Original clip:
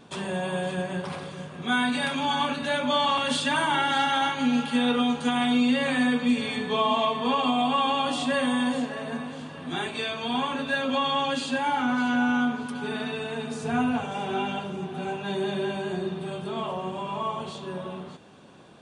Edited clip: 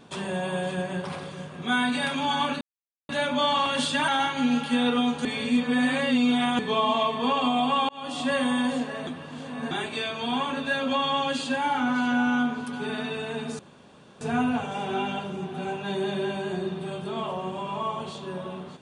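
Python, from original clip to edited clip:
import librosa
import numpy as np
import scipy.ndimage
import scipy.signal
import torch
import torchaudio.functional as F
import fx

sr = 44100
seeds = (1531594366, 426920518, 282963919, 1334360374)

y = fx.edit(x, sr, fx.insert_silence(at_s=2.61, length_s=0.48),
    fx.cut(start_s=3.6, length_s=0.5),
    fx.reverse_span(start_s=5.27, length_s=1.34),
    fx.fade_in_span(start_s=7.91, length_s=0.4),
    fx.reverse_span(start_s=9.09, length_s=0.64),
    fx.insert_room_tone(at_s=13.61, length_s=0.62), tone=tone)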